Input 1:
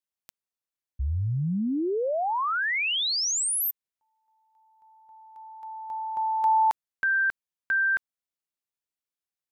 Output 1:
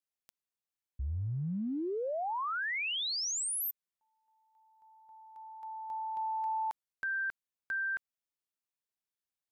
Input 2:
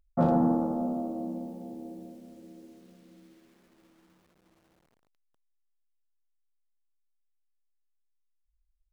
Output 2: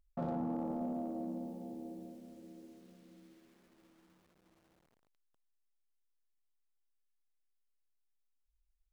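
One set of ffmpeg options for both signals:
ffmpeg -i in.wav -af "acompressor=threshold=-28dB:ratio=6:attack=0.12:release=52:knee=6:detection=rms,volume=-4dB" out.wav

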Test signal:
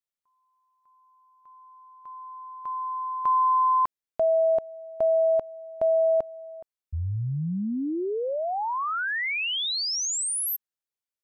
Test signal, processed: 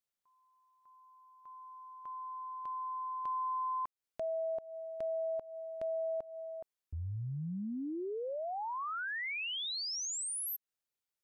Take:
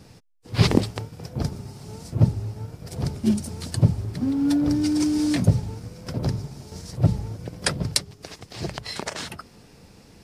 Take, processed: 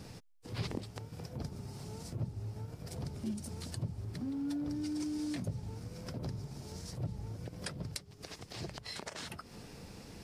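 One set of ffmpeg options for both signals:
ffmpeg -i in.wav -af "acompressor=threshold=-42dB:ratio=2.5:attack=1.3:release=141:knee=1:detection=rms" out.wav

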